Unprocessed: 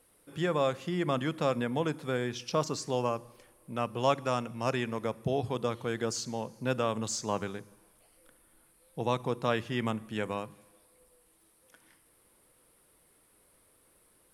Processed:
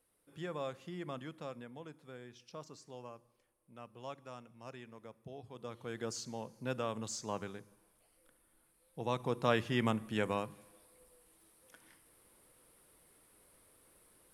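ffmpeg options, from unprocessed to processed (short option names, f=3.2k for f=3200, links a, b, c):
-af "volume=6.5dB,afade=t=out:st=0.91:d=0.84:silence=0.446684,afade=t=in:st=5.5:d=0.58:silence=0.266073,afade=t=in:st=9.01:d=0.58:silence=0.446684"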